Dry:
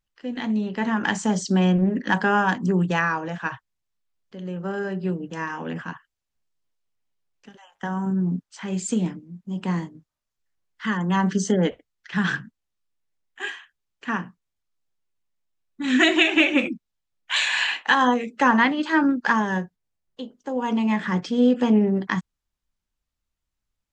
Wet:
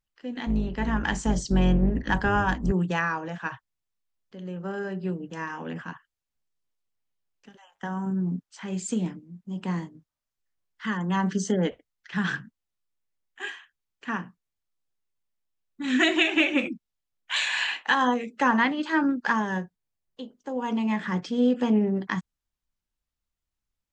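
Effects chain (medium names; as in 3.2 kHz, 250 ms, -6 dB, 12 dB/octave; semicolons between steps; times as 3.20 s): 0.46–2.72 s: octave divider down 2 oct, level 0 dB; trim -4 dB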